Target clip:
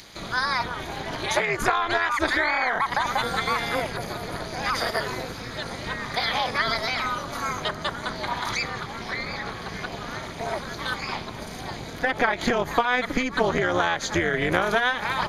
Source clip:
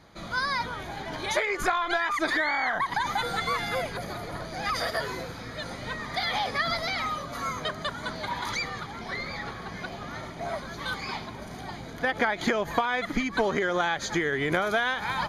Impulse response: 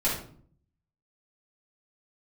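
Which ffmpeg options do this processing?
-filter_complex "[0:a]acrossover=split=650|2400[a][b][c];[c]acompressor=mode=upward:threshold=-40dB:ratio=2.5[d];[a][b][d]amix=inputs=3:normalize=0,tremolo=f=250:d=0.857,volume=7dB"

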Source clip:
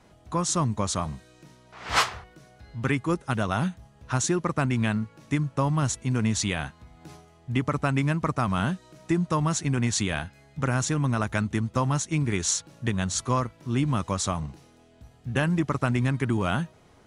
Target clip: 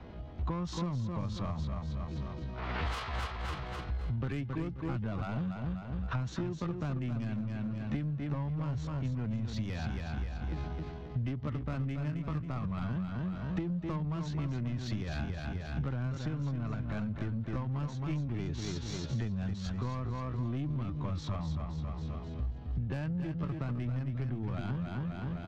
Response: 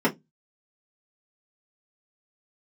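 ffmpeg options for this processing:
-filter_complex "[0:a]lowpass=f=4.2k:w=0.5412,lowpass=f=4.2k:w=1.3066,asoftclip=type=tanh:threshold=-22.5dB,tiltshelf=f=660:g=3.5,asplit=2[a][b];[b]aecho=0:1:178|356|534|712|890:0.501|0.2|0.0802|0.0321|0.0128[c];[a][c]amix=inputs=2:normalize=0,acrossover=split=210|3000[d][e][f];[e]acompressor=threshold=-29dB:ratio=6[g];[d][g][f]amix=inputs=3:normalize=0,equalizer=f=61:w=2.8:g=13,acompressor=threshold=-37dB:ratio=20,atempo=0.67,volume=6dB"

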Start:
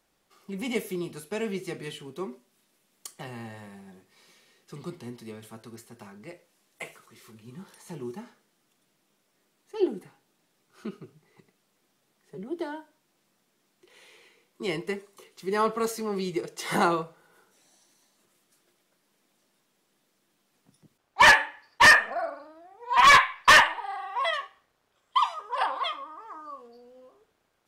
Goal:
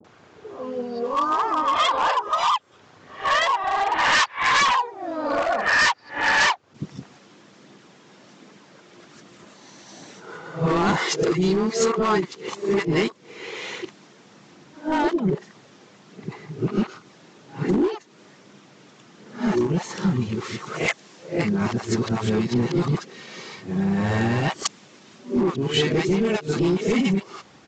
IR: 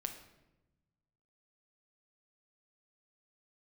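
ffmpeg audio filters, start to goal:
-filter_complex "[0:a]areverse,highpass=f=89:w=0.5412,highpass=f=89:w=1.3066,highshelf=f=2.2k:g=-9,aphaser=in_gain=1:out_gain=1:delay=2.5:decay=0.24:speed=1.3:type=triangular,apsyclip=21.5dB,asplit=2[a][b];[b]asetrate=37084,aresample=44100,atempo=1.18921,volume=-11dB[c];[a][c]amix=inputs=2:normalize=0,acompressor=threshold=-19dB:ratio=16,aresample=16000,volume=18.5dB,asoftclip=hard,volume=-18.5dB,aresample=44100,acrossover=split=630[d][e];[e]adelay=40[f];[d][f]amix=inputs=2:normalize=0,adynamicequalizer=threshold=0.01:dfrequency=3300:dqfactor=0.7:tfrequency=3300:tqfactor=0.7:attack=5:release=100:ratio=0.375:range=2:mode=boostabove:tftype=highshelf,volume=3.5dB"

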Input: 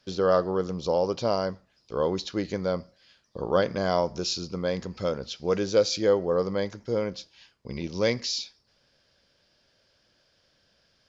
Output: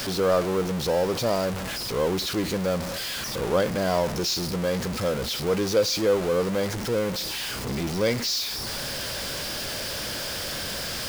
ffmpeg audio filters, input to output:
-af "aeval=exprs='val(0)+0.5*0.0668*sgn(val(0))':c=same,volume=-2dB"

